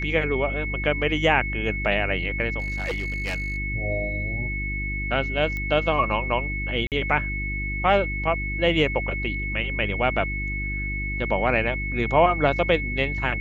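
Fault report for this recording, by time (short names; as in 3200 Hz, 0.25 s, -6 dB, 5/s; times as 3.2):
hum 50 Hz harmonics 7 -30 dBFS
tone 2200 Hz -29 dBFS
2.59–3.58 clipped -23.5 dBFS
5.57 pop -18 dBFS
6.87–6.92 gap 48 ms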